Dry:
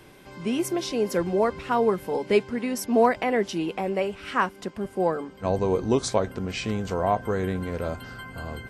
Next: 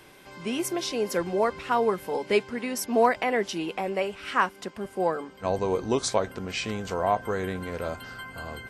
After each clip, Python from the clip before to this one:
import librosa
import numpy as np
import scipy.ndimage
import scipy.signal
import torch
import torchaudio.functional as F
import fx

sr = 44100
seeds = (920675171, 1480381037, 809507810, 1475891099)

y = fx.low_shelf(x, sr, hz=430.0, db=-8.0)
y = y * librosa.db_to_amplitude(1.5)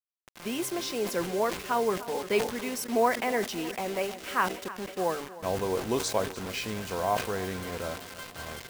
y = fx.quant_dither(x, sr, seeds[0], bits=6, dither='none')
y = fx.echo_feedback(y, sr, ms=306, feedback_pct=55, wet_db=-17.0)
y = fx.sustainer(y, sr, db_per_s=110.0)
y = y * librosa.db_to_amplitude(-3.5)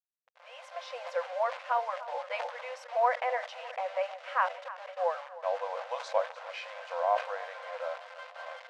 y = fx.fade_in_head(x, sr, length_s=0.97)
y = fx.brickwall_highpass(y, sr, low_hz=490.0)
y = fx.spacing_loss(y, sr, db_at_10k=34)
y = y * librosa.db_to_amplitude(3.0)